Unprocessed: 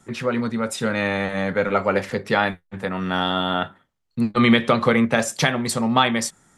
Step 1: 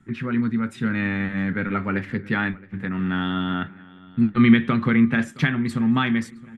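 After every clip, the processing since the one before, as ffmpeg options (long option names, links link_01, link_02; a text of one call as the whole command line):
ffmpeg -i in.wav -filter_complex "[0:a]firequalizer=gain_entry='entry(300,0);entry(530,-19);entry(1600,-3);entry(5400,-21)':delay=0.05:min_phase=1,asplit=2[link_01][link_02];[link_02]adelay=668,lowpass=frequency=4700:poles=1,volume=-21.5dB,asplit=2[link_03][link_04];[link_04]adelay=668,lowpass=frequency=4700:poles=1,volume=0.47,asplit=2[link_05][link_06];[link_06]adelay=668,lowpass=frequency=4700:poles=1,volume=0.47[link_07];[link_01][link_03][link_05][link_07]amix=inputs=4:normalize=0,volume=2.5dB" out.wav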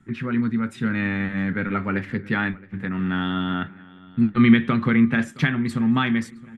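ffmpeg -i in.wav -af anull out.wav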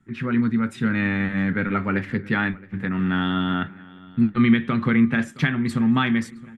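ffmpeg -i in.wav -af "dynaudnorm=framelen=100:gausssize=3:maxgain=8.5dB,volume=-6.5dB" out.wav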